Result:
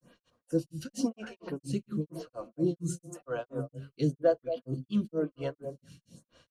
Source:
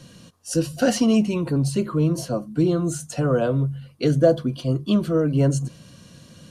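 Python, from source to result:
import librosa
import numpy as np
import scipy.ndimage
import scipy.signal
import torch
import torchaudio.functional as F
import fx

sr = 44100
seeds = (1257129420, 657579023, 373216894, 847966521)

y = fx.echo_stepped(x, sr, ms=128, hz=200.0, octaves=1.4, feedback_pct=70, wet_db=-4.5)
y = fx.granulator(y, sr, seeds[0], grain_ms=205.0, per_s=4.3, spray_ms=36.0, spread_st=0)
y = fx.stagger_phaser(y, sr, hz=0.97)
y = y * librosa.db_to_amplitude(-5.5)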